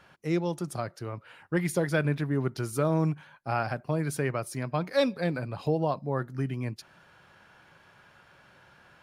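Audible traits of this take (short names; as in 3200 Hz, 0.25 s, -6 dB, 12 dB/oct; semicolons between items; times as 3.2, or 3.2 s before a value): noise floor -59 dBFS; spectral tilt -6.5 dB/oct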